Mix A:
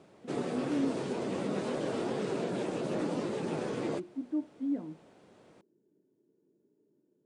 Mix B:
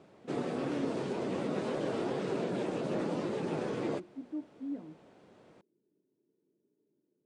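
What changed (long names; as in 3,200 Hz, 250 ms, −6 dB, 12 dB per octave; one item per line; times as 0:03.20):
speech −6.0 dB
master: add high-shelf EQ 7,600 Hz −9.5 dB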